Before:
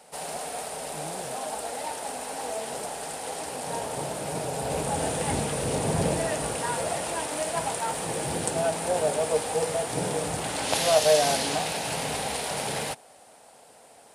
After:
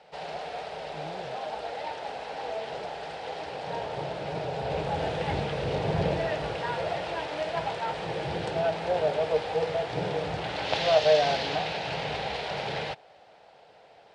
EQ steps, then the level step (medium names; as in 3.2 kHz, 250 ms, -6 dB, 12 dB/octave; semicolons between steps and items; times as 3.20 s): low-pass 4.2 kHz 24 dB/octave; peaking EQ 250 Hz -12.5 dB 0.36 oct; peaking EQ 1.1 kHz -4 dB 0.45 oct; 0.0 dB